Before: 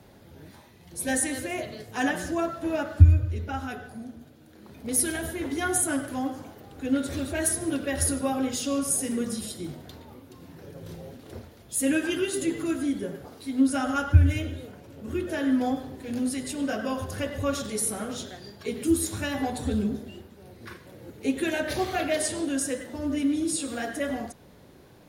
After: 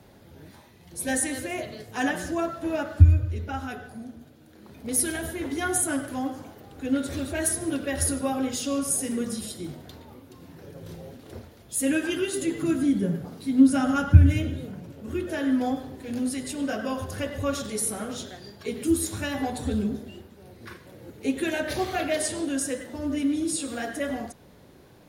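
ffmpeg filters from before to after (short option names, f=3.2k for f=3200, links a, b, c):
-filter_complex "[0:a]asettb=1/sr,asplit=3[a][b][c];[a]atrim=end=12.624[d];[b]atrim=start=12.62:end=14.92,asetpts=PTS-STARTPTS,afade=t=in:d=0.004:c=qsin,afade=t=out:st=2.296:d=0.004:c=qsin,equalizer=f=170:w=1.5:g=14.5[e];[c]atrim=start=14.916[f];[d][e]acrossfade=d=0.004:c1=hsin:c2=qsin[g];[g][f]acrossfade=d=0.004:c1=qsin:c2=hsin"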